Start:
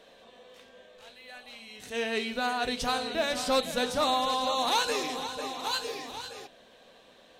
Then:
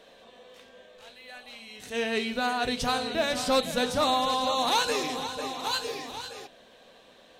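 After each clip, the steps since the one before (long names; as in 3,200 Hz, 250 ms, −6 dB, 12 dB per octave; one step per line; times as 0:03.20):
dynamic equaliser 120 Hz, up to +6 dB, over −52 dBFS, Q 0.99
level +1.5 dB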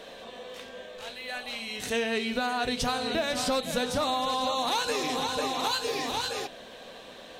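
downward compressor 6 to 1, threshold −35 dBFS, peak gain reduction 14 dB
level +9 dB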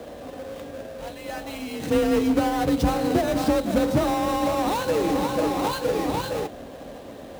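each half-wave held at its own peak
tilt shelving filter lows +7.5 dB, about 720 Hz
frequency shifter +34 Hz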